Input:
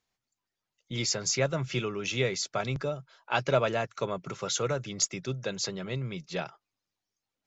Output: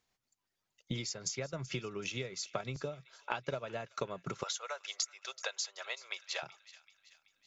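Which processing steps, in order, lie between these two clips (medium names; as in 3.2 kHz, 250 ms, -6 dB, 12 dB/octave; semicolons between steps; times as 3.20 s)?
4.43–6.43 s: inverse Chebyshev high-pass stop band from 260 Hz, stop band 50 dB; compression 8:1, threshold -39 dBFS, peak gain reduction 19.5 dB; transient shaper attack +5 dB, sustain -6 dB; feedback echo behind a high-pass 380 ms, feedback 51%, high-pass 1.7 kHz, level -17 dB; trim +1.5 dB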